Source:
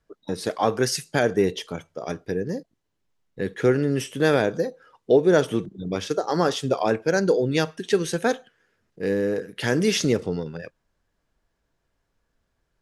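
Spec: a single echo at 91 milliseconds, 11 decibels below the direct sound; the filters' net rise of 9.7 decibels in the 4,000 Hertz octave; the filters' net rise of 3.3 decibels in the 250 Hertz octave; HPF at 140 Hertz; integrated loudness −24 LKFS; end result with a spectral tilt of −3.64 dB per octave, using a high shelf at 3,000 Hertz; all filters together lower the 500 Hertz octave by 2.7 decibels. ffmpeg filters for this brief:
ffmpeg -i in.wav -af "highpass=140,equalizer=frequency=250:width_type=o:gain=7,equalizer=frequency=500:width_type=o:gain=-6,highshelf=frequency=3000:gain=5,equalizer=frequency=4000:width_type=o:gain=8.5,aecho=1:1:91:0.282,volume=-2dB" out.wav

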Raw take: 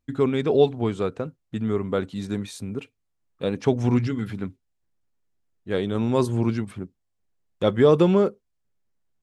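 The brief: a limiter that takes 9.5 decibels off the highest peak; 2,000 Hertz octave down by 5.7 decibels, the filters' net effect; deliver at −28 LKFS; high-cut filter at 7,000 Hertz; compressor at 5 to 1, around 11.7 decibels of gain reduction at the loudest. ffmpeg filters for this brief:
ffmpeg -i in.wav -af "lowpass=7000,equalizer=frequency=2000:width_type=o:gain=-7.5,acompressor=threshold=-25dB:ratio=5,volume=6dB,alimiter=limit=-17dB:level=0:latency=1" out.wav

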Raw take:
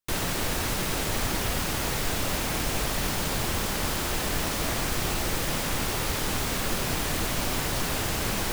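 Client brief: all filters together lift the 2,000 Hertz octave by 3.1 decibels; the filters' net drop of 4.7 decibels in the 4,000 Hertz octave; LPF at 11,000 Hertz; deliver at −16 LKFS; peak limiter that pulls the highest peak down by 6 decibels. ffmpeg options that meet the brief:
ffmpeg -i in.wav -af "lowpass=11000,equalizer=frequency=2000:width_type=o:gain=6,equalizer=frequency=4000:width_type=o:gain=-8.5,volume=14.5dB,alimiter=limit=-6dB:level=0:latency=1" out.wav

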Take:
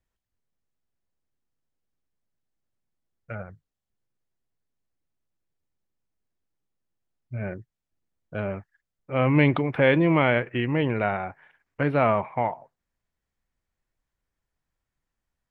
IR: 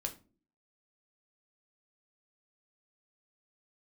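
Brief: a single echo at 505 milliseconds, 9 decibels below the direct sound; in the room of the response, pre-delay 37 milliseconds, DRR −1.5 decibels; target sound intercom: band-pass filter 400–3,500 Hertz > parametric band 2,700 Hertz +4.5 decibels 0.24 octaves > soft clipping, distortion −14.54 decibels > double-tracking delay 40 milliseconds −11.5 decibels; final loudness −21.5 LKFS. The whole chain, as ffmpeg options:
-filter_complex "[0:a]aecho=1:1:505:0.355,asplit=2[link_01][link_02];[1:a]atrim=start_sample=2205,adelay=37[link_03];[link_02][link_03]afir=irnorm=-1:irlink=0,volume=1.5dB[link_04];[link_01][link_04]amix=inputs=2:normalize=0,highpass=400,lowpass=3500,equalizer=frequency=2700:width_type=o:width=0.24:gain=4.5,asoftclip=threshold=-14dB,asplit=2[link_05][link_06];[link_06]adelay=40,volume=-11.5dB[link_07];[link_05][link_07]amix=inputs=2:normalize=0,volume=2.5dB"

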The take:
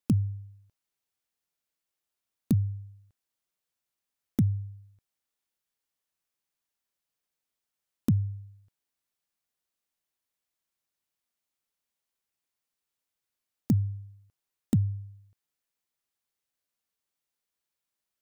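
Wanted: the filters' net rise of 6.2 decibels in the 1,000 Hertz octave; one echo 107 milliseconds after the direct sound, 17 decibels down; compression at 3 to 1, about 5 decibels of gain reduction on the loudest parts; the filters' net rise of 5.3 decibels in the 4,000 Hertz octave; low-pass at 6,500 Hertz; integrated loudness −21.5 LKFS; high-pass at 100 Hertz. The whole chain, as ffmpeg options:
ffmpeg -i in.wav -af "highpass=100,lowpass=6500,equalizer=frequency=1000:width_type=o:gain=8,equalizer=frequency=4000:width_type=o:gain=7,acompressor=threshold=-26dB:ratio=3,aecho=1:1:107:0.141,volume=14dB" out.wav

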